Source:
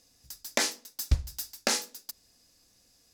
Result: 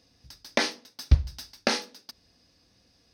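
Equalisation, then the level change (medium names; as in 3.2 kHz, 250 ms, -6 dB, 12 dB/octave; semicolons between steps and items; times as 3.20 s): Savitzky-Golay filter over 15 samples; high-pass 50 Hz; bass shelf 330 Hz +5 dB; +3.0 dB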